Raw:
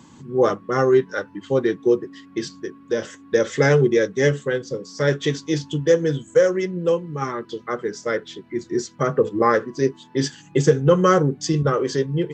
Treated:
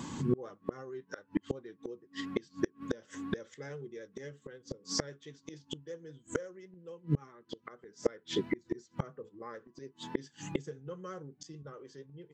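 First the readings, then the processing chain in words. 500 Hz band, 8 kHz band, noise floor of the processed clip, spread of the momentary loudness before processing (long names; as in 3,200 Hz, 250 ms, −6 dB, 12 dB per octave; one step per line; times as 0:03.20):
−21.5 dB, −12.5 dB, −70 dBFS, 12 LU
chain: gate with flip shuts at −23 dBFS, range −34 dB
pitch vibrato 11 Hz 30 cents
level +6 dB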